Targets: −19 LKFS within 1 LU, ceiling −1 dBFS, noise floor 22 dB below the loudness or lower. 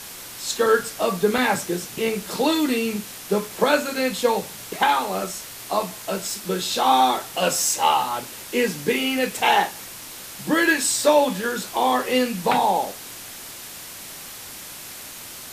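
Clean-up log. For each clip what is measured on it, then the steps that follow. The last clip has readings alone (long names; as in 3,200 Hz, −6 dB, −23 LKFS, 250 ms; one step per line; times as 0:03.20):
number of dropouts 2; longest dropout 2.0 ms; background noise floor −38 dBFS; target noise floor −44 dBFS; integrated loudness −22.0 LKFS; sample peak −5.5 dBFS; target loudness −19.0 LKFS
→ repair the gap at 0:01.38/0:02.22, 2 ms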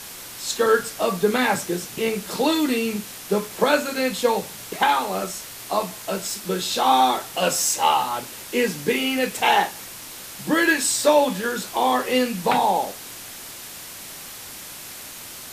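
number of dropouts 0; background noise floor −38 dBFS; target noise floor −44 dBFS
→ broadband denoise 6 dB, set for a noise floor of −38 dBFS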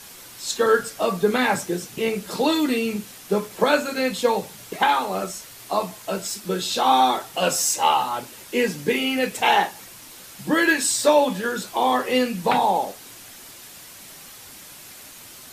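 background noise floor −43 dBFS; target noise floor −44 dBFS
→ broadband denoise 6 dB, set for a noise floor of −43 dBFS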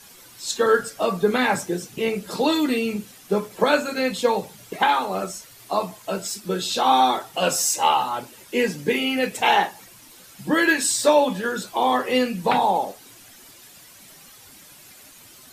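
background noise floor −48 dBFS; integrated loudness −22.0 LKFS; sample peak −5.5 dBFS; target loudness −19.0 LKFS
→ level +3 dB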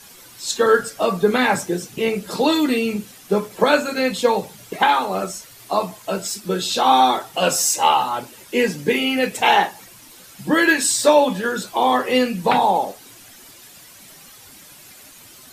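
integrated loudness −19.0 LKFS; sample peak −2.5 dBFS; background noise floor −45 dBFS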